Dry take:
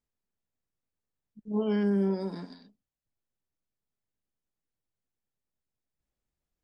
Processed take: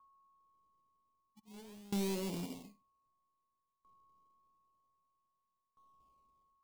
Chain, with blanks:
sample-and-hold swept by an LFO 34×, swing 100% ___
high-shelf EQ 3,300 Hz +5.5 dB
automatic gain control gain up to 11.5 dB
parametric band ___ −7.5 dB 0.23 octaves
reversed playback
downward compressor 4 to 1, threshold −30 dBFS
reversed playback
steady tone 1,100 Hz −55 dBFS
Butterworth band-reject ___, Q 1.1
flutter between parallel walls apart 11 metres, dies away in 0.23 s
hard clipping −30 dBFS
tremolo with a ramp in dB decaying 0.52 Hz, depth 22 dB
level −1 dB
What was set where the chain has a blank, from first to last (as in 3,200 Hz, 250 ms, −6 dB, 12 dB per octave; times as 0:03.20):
0.31 Hz, 78 Hz, 1,500 Hz